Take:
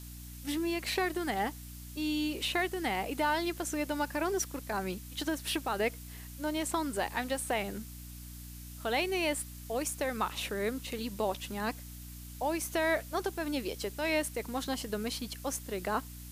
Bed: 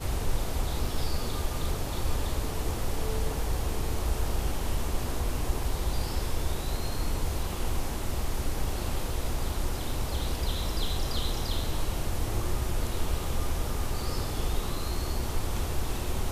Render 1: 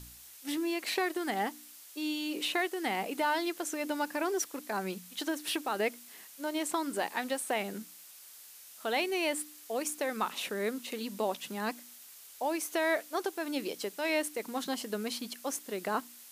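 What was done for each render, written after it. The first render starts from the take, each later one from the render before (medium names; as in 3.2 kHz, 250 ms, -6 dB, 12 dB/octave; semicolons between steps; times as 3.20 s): de-hum 60 Hz, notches 5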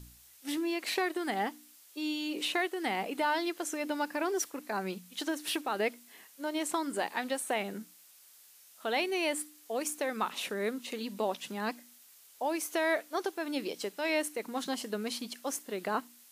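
noise print and reduce 6 dB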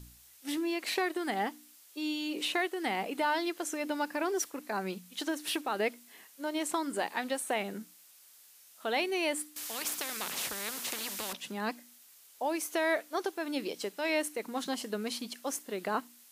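9.56–11.33 s: spectrum-flattening compressor 4:1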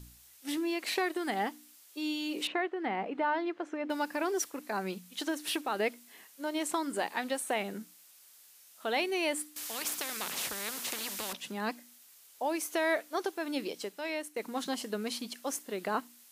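2.47–3.90 s: low-pass 1.9 kHz; 13.59–14.36 s: fade out, to -10 dB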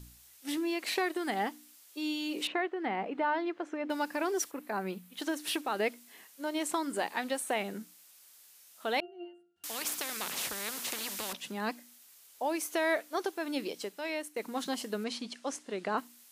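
4.51–5.22 s: peaking EQ 6.1 kHz -9 dB 1.5 oct; 9.00–9.64 s: pitch-class resonator F, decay 0.49 s; 15.04–15.98 s: Bessel low-pass 6.6 kHz, order 6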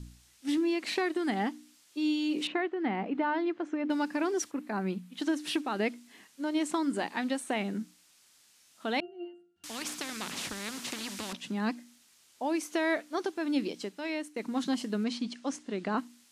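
low-pass 7.9 kHz 12 dB/octave; resonant low shelf 360 Hz +6 dB, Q 1.5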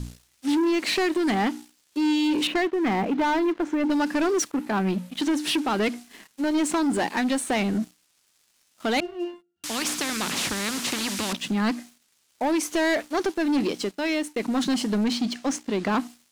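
waveshaping leveller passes 3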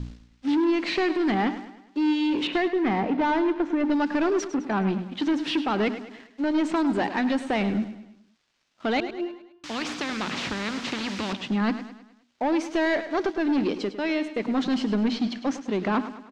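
distance through air 170 m; on a send: feedback delay 104 ms, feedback 47%, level -12.5 dB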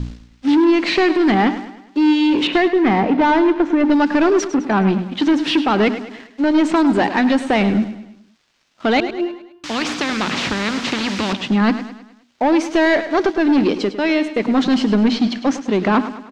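trim +9 dB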